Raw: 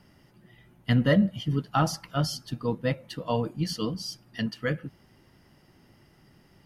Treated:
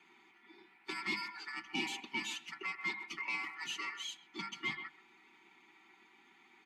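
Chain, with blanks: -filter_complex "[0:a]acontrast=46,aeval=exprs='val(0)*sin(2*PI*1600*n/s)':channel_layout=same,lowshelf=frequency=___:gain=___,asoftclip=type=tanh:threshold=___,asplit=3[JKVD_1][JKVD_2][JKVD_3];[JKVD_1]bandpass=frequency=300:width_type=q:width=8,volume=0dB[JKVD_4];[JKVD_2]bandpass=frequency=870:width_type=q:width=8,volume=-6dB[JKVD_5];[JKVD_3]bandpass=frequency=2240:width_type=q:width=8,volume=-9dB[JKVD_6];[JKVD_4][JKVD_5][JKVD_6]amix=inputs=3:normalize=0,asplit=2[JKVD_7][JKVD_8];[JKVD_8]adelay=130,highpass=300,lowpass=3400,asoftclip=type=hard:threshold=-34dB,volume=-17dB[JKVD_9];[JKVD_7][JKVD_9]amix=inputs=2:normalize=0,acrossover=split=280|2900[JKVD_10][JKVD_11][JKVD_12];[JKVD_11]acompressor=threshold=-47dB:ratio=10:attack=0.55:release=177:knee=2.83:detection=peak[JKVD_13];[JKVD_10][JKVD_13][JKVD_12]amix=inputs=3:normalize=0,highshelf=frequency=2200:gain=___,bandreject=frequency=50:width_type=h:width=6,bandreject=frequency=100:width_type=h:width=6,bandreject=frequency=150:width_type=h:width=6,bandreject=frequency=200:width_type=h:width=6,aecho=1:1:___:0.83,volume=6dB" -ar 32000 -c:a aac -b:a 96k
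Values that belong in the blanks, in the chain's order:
320, 3, -20.5dB, 9.5, 5.2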